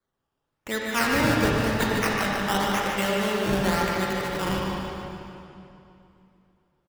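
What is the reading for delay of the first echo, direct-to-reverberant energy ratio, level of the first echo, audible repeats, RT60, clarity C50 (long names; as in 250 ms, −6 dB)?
149 ms, −4.0 dB, −6.5 dB, 2, 2.8 s, −3.0 dB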